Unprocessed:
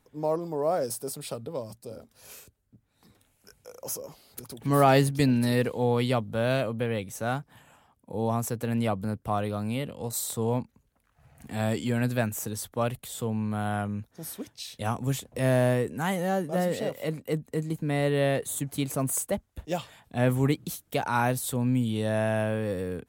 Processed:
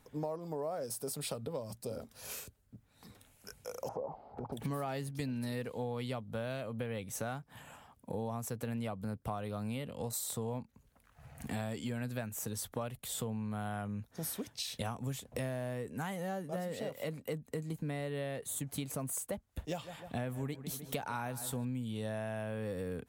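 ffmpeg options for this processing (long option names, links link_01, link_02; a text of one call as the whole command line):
ffmpeg -i in.wav -filter_complex "[0:a]asplit=3[link_01][link_02][link_03];[link_01]afade=type=out:start_time=3.87:duration=0.02[link_04];[link_02]lowpass=frequency=810:width_type=q:width=5,afade=type=in:start_time=3.87:duration=0.02,afade=type=out:start_time=4.52:duration=0.02[link_05];[link_03]afade=type=in:start_time=4.52:duration=0.02[link_06];[link_04][link_05][link_06]amix=inputs=3:normalize=0,asettb=1/sr,asplit=3[link_07][link_08][link_09];[link_07]atrim=end=19.614[link_10];[link_08]atrim=start=19.61:end=21.65,asetpts=PTS-STARTPTS,afade=type=in:duration=0.004:curve=qsin,afade=type=out:start_time=2.036:duration=0.004:curve=qsin,asplit=2[link_11][link_12];[link_12]adelay=153,lowpass=frequency=2800:poles=1,volume=-15.5dB,asplit=2[link_13][link_14];[link_14]adelay=153,lowpass=frequency=2800:poles=1,volume=0.41,asplit=2[link_15][link_16];[link_16]adelay=153,lowpass=frequency=2800:poles=1,volume=0.41,asplit=2[link_17][link_18];[link_18]adelay=153,lowpass=frequency=2800:poles=1,volume=0.41[link_19];[link_11][link_13][link_15][link_17][link_19]amix=inputs=5:normalize=0,atrim=end_sample=89964[link_20];[link_09]atrim=start=21.646[link_21];[link_10][link_20]acrossfade=duration=0.004:curve1=hsin:curve2=qsin[link_22];[link_22][link_21]acrossfade=duration=0.004:curve1=qsin:curve2=hsin,equalizer=frequency=340:width_type=o:width=0.29:gain=-5,acompressor=threshold=-39dB:ratio=8,volume=3.5dB" out.wav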